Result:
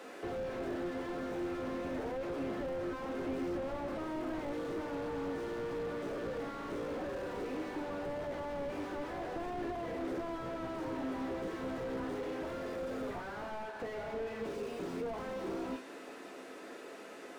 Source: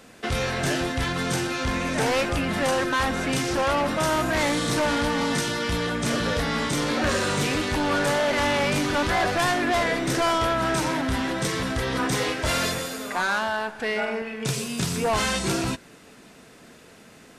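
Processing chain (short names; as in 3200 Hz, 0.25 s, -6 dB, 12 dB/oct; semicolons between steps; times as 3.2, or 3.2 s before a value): Chebyshev high-pass 310 Hz, order 3; high shelf 2200 Hz -11.5 dB; compressor 8:1, threshold -37 dBFS, peak gain reduction 15 dB; on a send at -2 dB: reverb, pre-delay 3 ms; on the sum: slew limiter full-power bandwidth 5.5 Hz; gain +3.5 dB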